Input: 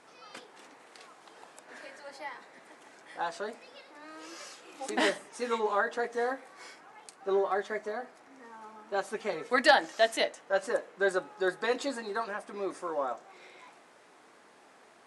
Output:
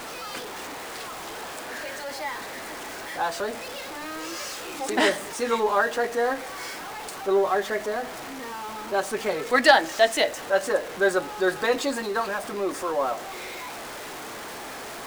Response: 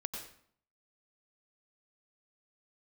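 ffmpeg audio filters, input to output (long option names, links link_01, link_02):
-af "aeval=exprs='val(0)+0.5*0.0126*sgn(val(0))':channel_layout=same,volume=5.5dB"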